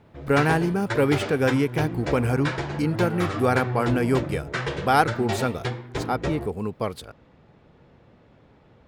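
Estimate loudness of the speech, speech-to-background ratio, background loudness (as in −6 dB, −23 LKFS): −24.5 LKFS, 5.5 dB, −30.0 LKFS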